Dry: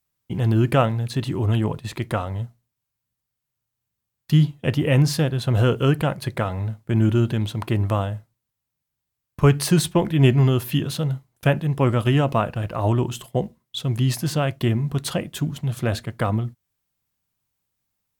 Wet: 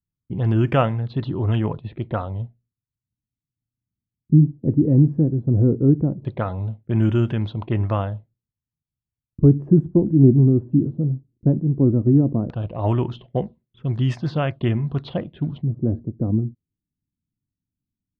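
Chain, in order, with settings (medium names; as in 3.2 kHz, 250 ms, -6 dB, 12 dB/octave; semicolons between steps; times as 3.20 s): level-controlled noise filter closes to 380 Hz, open at -14 dBFS; touch-sensitive phaser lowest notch 590 Hz, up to 4.1 kHz, full sweep at -17.5 dBFS; LFO low-pass square 0.16 Hz 300–3700 Hz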